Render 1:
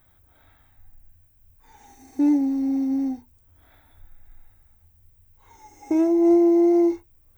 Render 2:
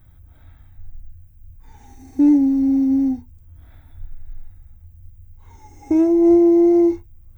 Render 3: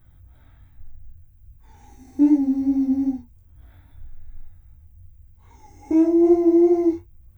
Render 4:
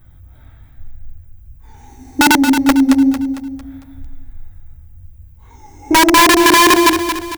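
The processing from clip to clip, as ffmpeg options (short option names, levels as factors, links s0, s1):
-af "bass=f=250:g=15,treble=f=4000:g=-1"
-af "flanger=delay=15.5:depth=5.6:speed=2.5"
-filter_complex "[0:a]aeval=exprs='(mod(4.47*val(0)+1,2)-1)/4.47':c=same,asplit=2[s0][s1];[s1]aecho=0:1:226|452|678|904|1130:0.376|0.165|0.0728|0.032|0.0141[s2];[s0][s2]amix=inputs=2:normalize=0,volume=2.51"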